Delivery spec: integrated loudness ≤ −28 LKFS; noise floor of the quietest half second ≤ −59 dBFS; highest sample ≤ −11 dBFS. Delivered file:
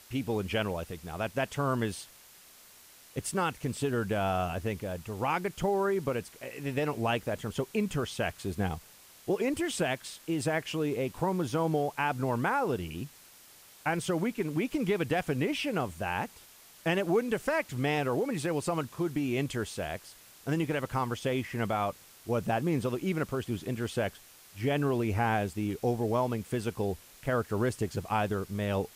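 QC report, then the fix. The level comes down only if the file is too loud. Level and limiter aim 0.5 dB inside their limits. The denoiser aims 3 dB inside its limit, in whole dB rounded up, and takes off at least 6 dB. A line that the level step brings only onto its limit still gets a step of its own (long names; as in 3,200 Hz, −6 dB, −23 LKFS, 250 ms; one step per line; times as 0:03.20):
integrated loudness −31.5 LKFS: in spec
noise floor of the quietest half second −55 dBFS: out of spec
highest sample −16.5 dBFS: in spec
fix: broadband denoise 7 dB, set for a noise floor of −55 dBFS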